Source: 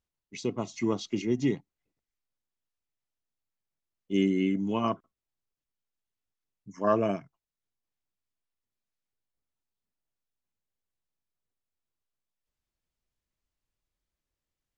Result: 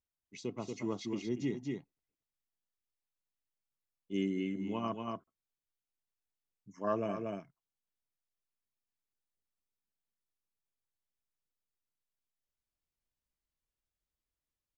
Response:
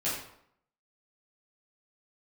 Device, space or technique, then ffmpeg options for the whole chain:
ducked delay: -filter_complex "[0:a]asplit=3[a][b][c];[b]adelay=234,volume=-3dB[d];[c]apad=whole_len=662010[e];[d][e]sidechaincompress=threshold=-33dB:ratio=8:attack=9.3:release=125[f];[a][f]amix=inputs=2:normalize=0,volume=-8.5dB"

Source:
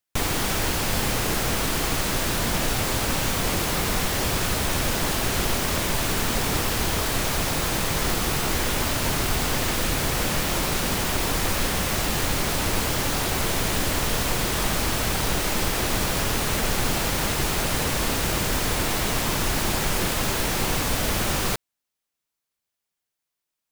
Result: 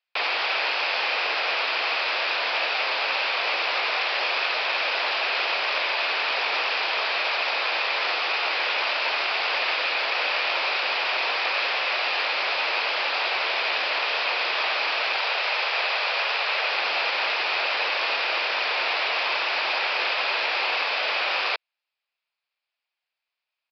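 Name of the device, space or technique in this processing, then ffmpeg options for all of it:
musical greeting card: -filter_complex "[0:a]asettb=1/sr,asplit=3[a][b][c];[a]atrim=end=15.204[d];[b]atrim=start=15.2:end=16.7,asetpts=PTS-STARTPTS,afade=t=in:d=0.004:c=qsin,afade=t=out:st=1.496:d=0.004:c=qsin,highpass=f=400:w=0.5412,highpass=f=400:w=1.3066[e];[c]atrim=start=16.696[f];[d][e]acrossfade=d=0.004:c1=hsin:c2=qsin[g];[g][f]acrossfade=d=0.004:c1=qsin:c2=hsin,aresample=11025,aresample=44100,highpass=f=560:w=0.5412,highpass=f=560:w=1.3066,equalizer=f=2.5k:t=o:w=0.31:g=9,volume=2dB"

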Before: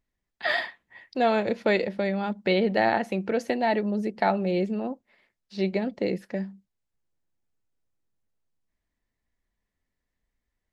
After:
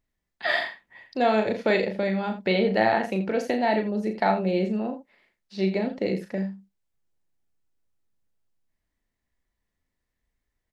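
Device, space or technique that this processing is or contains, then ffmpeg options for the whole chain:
slapback doubling: -filter_complex "[0:a]asplit=3[a][b][c];[b]adelay=37,volume=-6.5dB[d];[c]adelay=83,volume=-12dB[e];[a][d][e]amix=inputs=3:normalize=0"

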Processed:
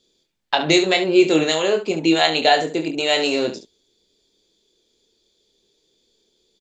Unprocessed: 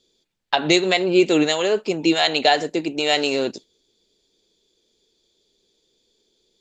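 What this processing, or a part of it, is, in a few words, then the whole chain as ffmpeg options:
slapback doubling: -filter_complex "[0:a]asettb=1/sr,asplit=3[a][b][c];[a]atrim=end=1.554[d];[b]atrim=start=1.55:end=3.2,asetpts=PTS-STARTPTS,afade=t=in:d=0.004:c=qsin,afade=t=out:st=1.646:d=0.004:c=qsin,bandreject=f=5.3k:w=5.1[e];[c]atrim=start=3.196[f];[d][e]acrossfade=d=0.004:c1=hsin:c2=qsin[g];[g][f]acrossfade=d=0.004:c1=qsin:c2=hsin,asplit=3[h][i][j];[i]adelay=25,volume=-6dB[k];[j]adelay=70,volume=-11dB[l];[h][k][l]amix=inputs=3:normalize=0"

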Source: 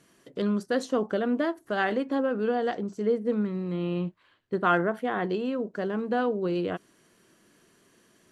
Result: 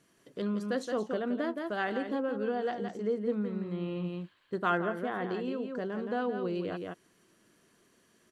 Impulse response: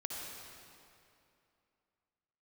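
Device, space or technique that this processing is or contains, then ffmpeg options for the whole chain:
ducked delay: -filter_complex "[0:a]asplit=3[a][b][c];[b]adelay=170,volume=-3dB[d];[c]apad=whole_len=374290[e];[d][e]sidechaincompress=threshold=-29dB:ratio=8:attack=16:release=232[f];[a][f]amix=inputs=2:normalize=0,asettb=1/sr,asplit=3[g][h][i];[g]atrim=end=4.044[j];[h]atrim=start=4.04:end=4.7,asetpts=PTS-STARTPTS,afade=t=in:d=0.004:c=qsin,afade=t=out:st=0.656:d=0.004:c=qsin,highshelf=f=3.7k:g=8[k];[i]atrim=start=4.696[l];[j][k]acrossfade=d=0.004:c1=hsin:c2=qsin[m];[m][l]acrossfade=d=0.004:c1=qsin:c2=hsin,volume=-6dB"

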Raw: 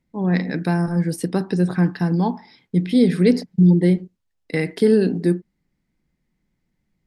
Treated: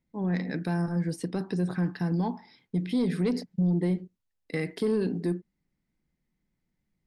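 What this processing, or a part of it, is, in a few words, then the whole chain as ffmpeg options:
soft clipper into limiter: -filter_complex "[0:a]asettb=1/sr,asplit=3[a][b][c];[a]atrim=end=0.824[d];[b]atrim=start=0.82:end=1.39,asetpts=PTS-STARTPTS,afade=t=in:d=0.004:c=qsin,afade=t=out:st=0.566:d=0.004:c=qsin,lowpass=8.3k[e];[c]atrim=start=1.386[f];[d][e]acrossfade=d=0.004:c1=hsin:c2=qsin[g];[g][f]acrossfade=d=0.004:c1=qsin:c2=hsin,asoftclip=type=tanh:threshold=-8dB,alimiter=limit=-13dB:level=0:latency=1:release=61,volume=-7dB"

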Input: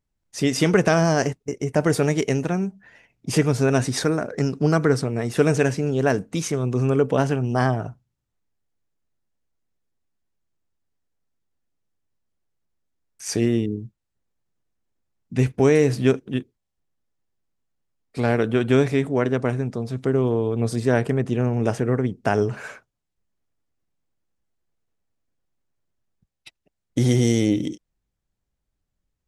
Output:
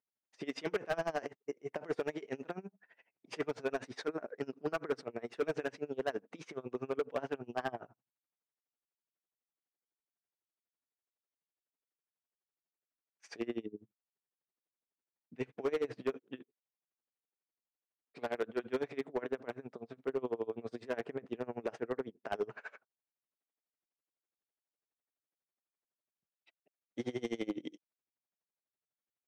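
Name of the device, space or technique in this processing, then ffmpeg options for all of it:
helicopter radio: -af "highpass=370,lowpass=2.9k,aeval=exprs='val(0)*pow(10,-26*(0.5-0.5*cos(2*PI*12*n/s))/20)':c=same,asoftclip=type=hard:threshold=-21dB,volume=-6dB"

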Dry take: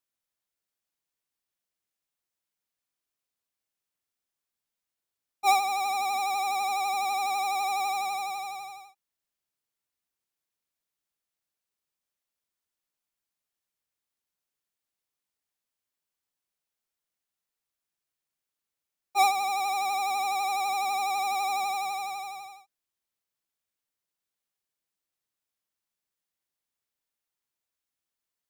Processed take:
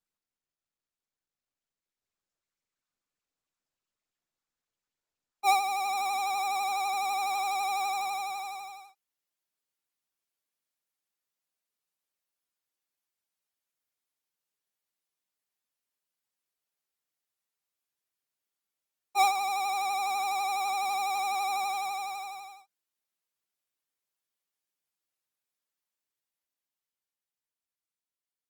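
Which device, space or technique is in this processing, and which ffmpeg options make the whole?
video call: -af "highpass=f=180:p=1,dynaudnorm=f=210:g=21:m=7dB,volume=-8.5dB" -ar 48000 -c:a libopus -b:a 24k

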